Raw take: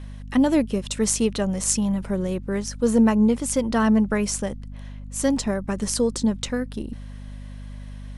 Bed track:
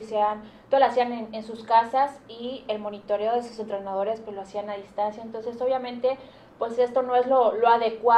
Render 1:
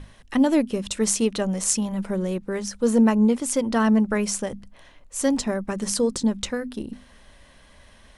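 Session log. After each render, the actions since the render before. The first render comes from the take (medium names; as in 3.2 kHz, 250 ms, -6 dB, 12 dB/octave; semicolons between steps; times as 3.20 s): hum notches 50/100/150/200/250 Hz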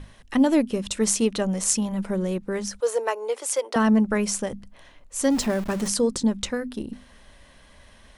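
2.80–3.76 s: steep high-pass 390 Hz 48 dB/octave; 5.31–5.88 s: jump at every zero crossing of -31.5 dBFS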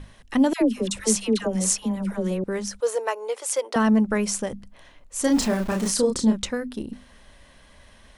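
0.53–2.44 s: phase dispersion lows, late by 88 ms, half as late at 880 Hz; 2.95–3.53 s: peaking EQ 270 Hz -11.5 dB 0.57 oct; 5.21–6.38 s: doubling 32 ms -4 dB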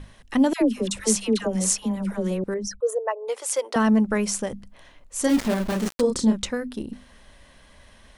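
2.54–3.28 s: resonances exaggerated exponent 2; 5.29–6.01 s: dead-time distortion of 0.2 ms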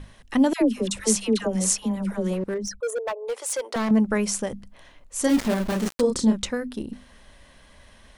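2.33–3.91 s: hard clipper -23 dBFS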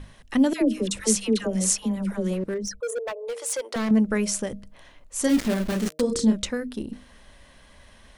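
de-hum 155 Hz, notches 4; dynamic bell 900 Hz, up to -6 dB, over -41 dBFS, Q 1.6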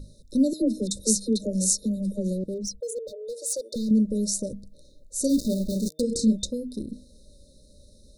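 FFT band-reject 620–3600 Hz; dynamic bell 400 Hz, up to -4 dB, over -36 dBFS, Q 1.6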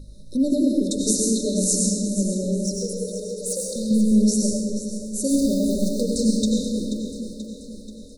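feedback delay 483 ms, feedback 56%, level -11.5 dB; algorithmic reverb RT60 1.6 s, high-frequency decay 0.85×, pre-delay 55 ms, DRR -1.5 dB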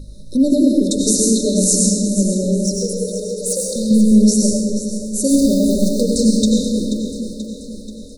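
trim +6.5 dB; peak limiter -3 dBFS, peak gain reduction 2.5 dB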